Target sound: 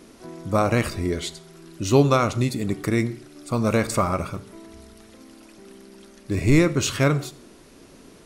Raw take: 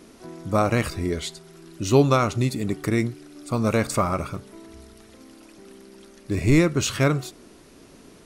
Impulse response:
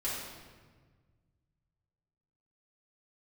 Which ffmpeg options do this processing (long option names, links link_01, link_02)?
-filter_complex "[0:a]asplit=2[link_01][link_02];[1:a]atrim=start_sample=2205,afade=type=out:start_time=0.33:duration=0.01,atrim=end_sample=14994,asetrate=66150,aresample=44100[link_03];[link_02][link_03]afir=irnorm=-1:irlink=0,volume=-15dB[link_04];[link_01][link_04]amix=inputs=2:normalize=0"